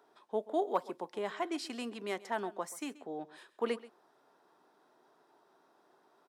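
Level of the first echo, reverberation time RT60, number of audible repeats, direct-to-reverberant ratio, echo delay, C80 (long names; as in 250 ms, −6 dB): −18.5 dB, no reverb audible, 1, no reverb audible, 132 ms, no reverb audible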